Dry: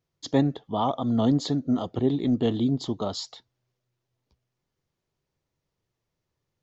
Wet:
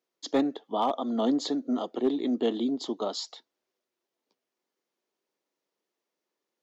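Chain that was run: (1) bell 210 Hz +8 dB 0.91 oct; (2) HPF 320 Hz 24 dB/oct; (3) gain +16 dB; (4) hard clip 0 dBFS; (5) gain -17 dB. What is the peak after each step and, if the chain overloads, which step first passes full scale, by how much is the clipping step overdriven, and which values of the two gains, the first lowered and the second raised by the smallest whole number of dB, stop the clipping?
-6.0, -12.0, +4.0, 0.0, -17.0 dBFS; step 3, 4.0 dB; step 3 +12 dB, step 5 -13 dB

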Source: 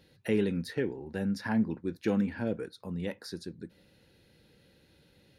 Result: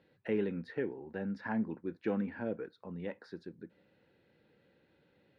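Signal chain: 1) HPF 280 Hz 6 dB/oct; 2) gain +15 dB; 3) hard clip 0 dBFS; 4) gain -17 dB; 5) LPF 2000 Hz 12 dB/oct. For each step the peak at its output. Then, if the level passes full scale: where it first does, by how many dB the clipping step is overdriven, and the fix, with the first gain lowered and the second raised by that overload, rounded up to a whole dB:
-19.0, -4.0, -4.0, -21.0, -21.5 dBFS; no overload

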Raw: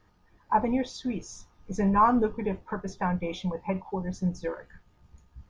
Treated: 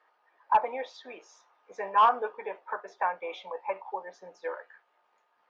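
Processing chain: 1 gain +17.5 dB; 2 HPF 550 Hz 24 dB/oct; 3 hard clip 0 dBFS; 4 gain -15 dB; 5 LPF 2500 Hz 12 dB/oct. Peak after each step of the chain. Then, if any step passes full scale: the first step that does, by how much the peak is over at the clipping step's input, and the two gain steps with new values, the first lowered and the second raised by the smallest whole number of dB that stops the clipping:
+7.0, +7.0, 0.0, -15.0, -14.5 dBFS; step 1, 7.0 dB; step 1 +10.5 dB, step 4 -8 dB

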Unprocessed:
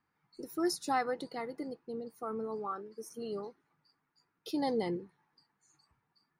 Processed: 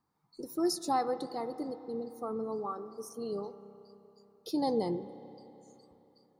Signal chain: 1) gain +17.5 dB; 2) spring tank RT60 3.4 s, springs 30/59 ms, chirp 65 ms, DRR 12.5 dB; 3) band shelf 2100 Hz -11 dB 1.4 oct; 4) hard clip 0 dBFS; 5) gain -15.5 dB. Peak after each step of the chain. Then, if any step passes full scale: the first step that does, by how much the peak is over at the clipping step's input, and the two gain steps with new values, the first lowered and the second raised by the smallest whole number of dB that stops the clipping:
-2.5, -2.0, -4.0, -4.0, -19.5 dBFS; no overload

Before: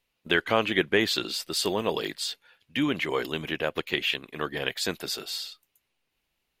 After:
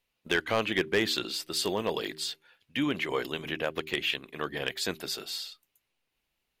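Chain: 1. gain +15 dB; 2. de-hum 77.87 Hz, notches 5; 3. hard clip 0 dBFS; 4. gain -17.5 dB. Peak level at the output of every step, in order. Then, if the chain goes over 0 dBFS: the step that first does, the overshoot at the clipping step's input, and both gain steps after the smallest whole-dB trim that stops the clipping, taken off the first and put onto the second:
+6.5, +7.0, 0.0, -17.5 dBFS; step 1, 7.0 dB; step 1 +8 dB, step 4 -10.5 dB

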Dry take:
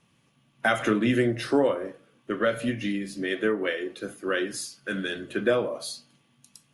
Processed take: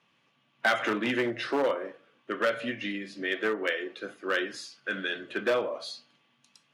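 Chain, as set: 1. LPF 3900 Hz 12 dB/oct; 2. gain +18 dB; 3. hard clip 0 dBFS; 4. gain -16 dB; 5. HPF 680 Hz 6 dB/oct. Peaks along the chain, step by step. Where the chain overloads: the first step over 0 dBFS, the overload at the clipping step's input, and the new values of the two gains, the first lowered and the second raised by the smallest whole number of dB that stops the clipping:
-10.5, +7.5, 0.0, -16.0, -13.0 dBFS; step 2, 7.5 dB; step 2 +10 dB, step 4 -8 dB

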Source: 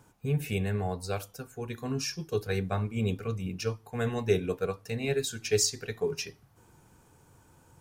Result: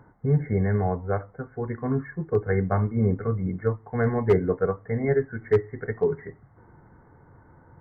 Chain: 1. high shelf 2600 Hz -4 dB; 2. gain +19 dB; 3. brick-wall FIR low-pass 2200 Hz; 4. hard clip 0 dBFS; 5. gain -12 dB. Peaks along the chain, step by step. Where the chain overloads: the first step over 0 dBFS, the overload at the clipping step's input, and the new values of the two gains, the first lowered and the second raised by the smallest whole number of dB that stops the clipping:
-13.0, +6.0, +6.0, 0.0, -12.0 dBFS; step 2, 6.0 dB; step 2 +13 dB, step 5 -6 dB

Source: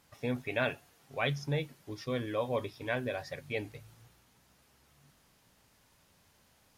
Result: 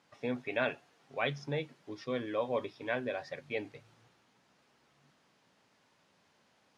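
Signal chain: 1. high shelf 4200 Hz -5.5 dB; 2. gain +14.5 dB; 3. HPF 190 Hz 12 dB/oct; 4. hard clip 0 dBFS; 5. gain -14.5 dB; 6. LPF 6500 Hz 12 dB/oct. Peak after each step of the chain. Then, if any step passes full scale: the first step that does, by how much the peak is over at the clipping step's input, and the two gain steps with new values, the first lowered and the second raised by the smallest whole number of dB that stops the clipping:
-17.5, -3.0, -2.0, -2.0, -16.5, -16.5 dBFS; no overload

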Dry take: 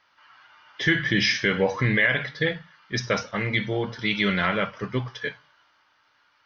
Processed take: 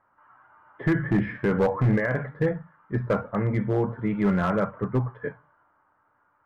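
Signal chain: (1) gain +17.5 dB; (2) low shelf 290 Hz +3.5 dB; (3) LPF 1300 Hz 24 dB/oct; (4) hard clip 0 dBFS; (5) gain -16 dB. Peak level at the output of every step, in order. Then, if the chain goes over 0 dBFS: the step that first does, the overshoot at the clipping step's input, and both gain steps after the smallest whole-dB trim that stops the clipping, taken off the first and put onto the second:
+9.5, +10.0, +9.0, 0.0, -16.0 dBFS; step 1, 9.0 dB; step 1 +8.5 dB, step 5 -7 dB

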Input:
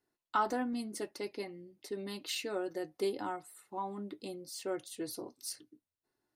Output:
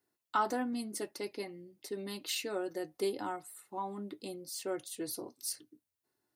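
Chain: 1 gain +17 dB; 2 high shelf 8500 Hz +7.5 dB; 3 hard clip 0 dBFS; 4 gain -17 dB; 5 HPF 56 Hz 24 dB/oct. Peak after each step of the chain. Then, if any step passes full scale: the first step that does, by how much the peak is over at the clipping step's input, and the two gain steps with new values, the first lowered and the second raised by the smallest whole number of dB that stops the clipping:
-2.5, -2.5, -2.5, -19.5, -19.0 dBFS; no overload

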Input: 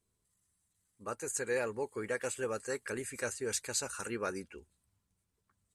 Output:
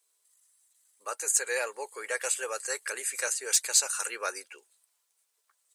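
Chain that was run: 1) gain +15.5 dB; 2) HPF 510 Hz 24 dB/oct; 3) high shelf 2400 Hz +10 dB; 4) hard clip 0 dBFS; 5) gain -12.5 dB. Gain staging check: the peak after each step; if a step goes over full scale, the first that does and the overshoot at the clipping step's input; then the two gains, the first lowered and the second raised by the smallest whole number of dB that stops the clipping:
-5.0, -4.5, +4.5, 0.0, -12.5 dBFS; step 3, 4.5 dB; step 1 +10.5 dB, step 5 -7.5 dB

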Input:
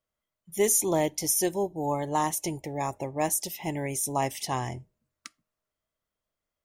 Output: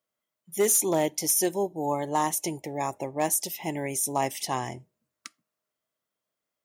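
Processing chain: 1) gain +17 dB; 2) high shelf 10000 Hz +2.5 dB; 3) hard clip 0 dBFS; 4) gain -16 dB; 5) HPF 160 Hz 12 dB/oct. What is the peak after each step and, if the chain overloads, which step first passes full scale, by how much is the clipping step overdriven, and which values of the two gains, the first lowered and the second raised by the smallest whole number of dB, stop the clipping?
+5.5, +6.5, 0.0, -16.0, -13.0 dBFS; step 1, 6.5 dB; step 1 +10 dB, step 4 -9 dB

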